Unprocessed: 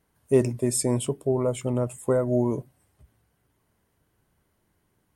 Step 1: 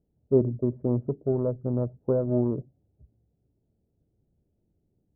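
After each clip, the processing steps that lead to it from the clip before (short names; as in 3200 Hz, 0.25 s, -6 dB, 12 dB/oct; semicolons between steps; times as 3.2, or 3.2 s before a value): Wiener smoothing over 41 samples; Bessel low-pass 670 Hz, order 8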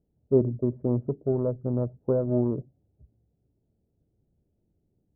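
nothing audible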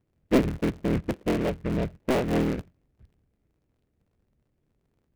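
cycle switcher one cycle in 3, inverted; noise-modulated delay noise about 1600 Hz, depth 0.07 ms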